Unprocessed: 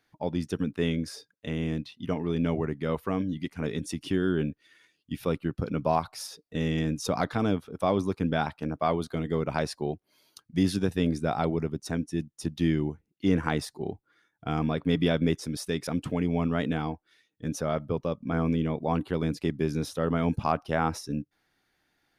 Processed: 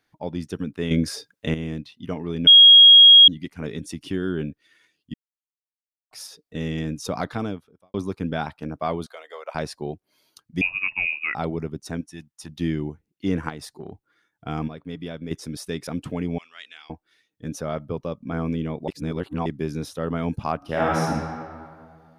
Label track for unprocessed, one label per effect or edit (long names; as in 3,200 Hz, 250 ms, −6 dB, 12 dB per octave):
0.910000	1.540000	clip gain +9 dB
2.470000	3.280000	beep over 3,280 Hz −6 dBFS
5.140000	6.110000	silence
7.390000	7.940000	fade out quadratic
9.060000	9.550000	elliptic high-pass filter 550 Hz, stop band 80 dB
10.610000	11.350000	voice inversion scrambler carrier 2,700 Hz
12.010000	12.490000	low shelf with overshoot 620 Hz −9 dB, Q 1.5
13.490000	13.920000	downward compressor, threshold −31 dBFS
14.680000	15.310000	clip gain −9.5 dB
16.380000	16.900000	flat-topped band-pass 4,400 Hz, Q 0.73
18.880000	19.460000	reverse
20.570000	21.030000	thrown reverb, RT60 2.1 s, DRR −5.5 dB